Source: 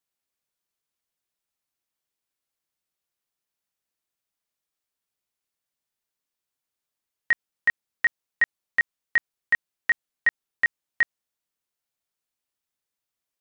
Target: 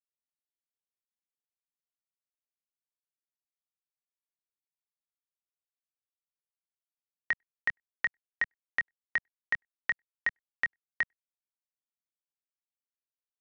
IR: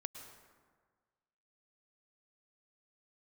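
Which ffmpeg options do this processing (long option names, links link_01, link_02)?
-filter_complex "[0:a]acrossover=split=130[link_01][link_02];[link_02]acompressor=threshold=-26dB:ratio=4[link_03];[link_01][link_03]amix=inputs=2:normalize=0,aresample=16000,aeval=exprs='sgn(val(0))*max(abs(val(0))-0.00112,0)':channel_layout=same,aresample=44100[link_04];[1:a]atrim=start_sample=2205,afade=type=out:start_time=0.14:duration=0.01,atrim=end_sample=6615[link_05];[link_04][link_05]afir=irnorm=-1:irlink=0,volume=2dB"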